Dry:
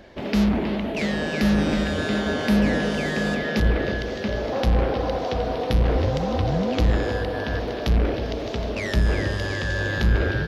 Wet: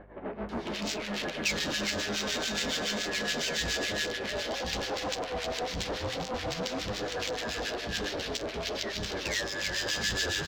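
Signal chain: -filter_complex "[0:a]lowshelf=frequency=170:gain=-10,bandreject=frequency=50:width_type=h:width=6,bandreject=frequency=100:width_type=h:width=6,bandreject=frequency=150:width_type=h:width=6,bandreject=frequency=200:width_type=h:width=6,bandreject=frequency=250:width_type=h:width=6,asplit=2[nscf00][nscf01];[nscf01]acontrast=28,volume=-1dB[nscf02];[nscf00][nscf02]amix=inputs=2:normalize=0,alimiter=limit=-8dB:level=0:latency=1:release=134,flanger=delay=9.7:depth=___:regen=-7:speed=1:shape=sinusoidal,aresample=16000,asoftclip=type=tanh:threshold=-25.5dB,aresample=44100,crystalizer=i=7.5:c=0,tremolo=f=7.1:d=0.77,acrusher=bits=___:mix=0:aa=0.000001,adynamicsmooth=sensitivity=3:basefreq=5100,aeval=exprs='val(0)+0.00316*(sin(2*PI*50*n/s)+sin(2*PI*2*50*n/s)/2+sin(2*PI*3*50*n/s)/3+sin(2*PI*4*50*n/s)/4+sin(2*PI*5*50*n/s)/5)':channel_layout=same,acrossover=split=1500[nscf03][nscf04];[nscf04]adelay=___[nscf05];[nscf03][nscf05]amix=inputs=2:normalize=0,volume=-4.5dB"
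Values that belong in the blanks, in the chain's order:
2.8, 7, 490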